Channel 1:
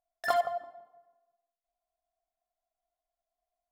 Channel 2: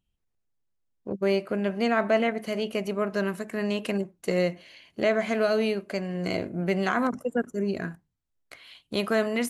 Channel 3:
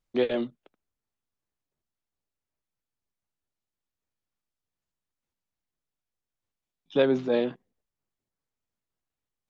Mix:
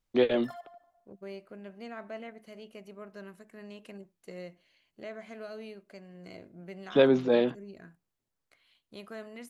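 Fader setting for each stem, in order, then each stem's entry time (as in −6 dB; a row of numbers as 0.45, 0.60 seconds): −18.5, −18.5, +1.0 decibels; 0.20, 0.00, 0.00 seconds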